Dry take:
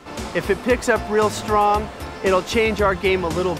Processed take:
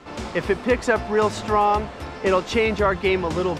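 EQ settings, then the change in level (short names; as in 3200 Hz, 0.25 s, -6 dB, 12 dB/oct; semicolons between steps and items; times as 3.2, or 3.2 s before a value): air absorption 53 m; -1.5 dB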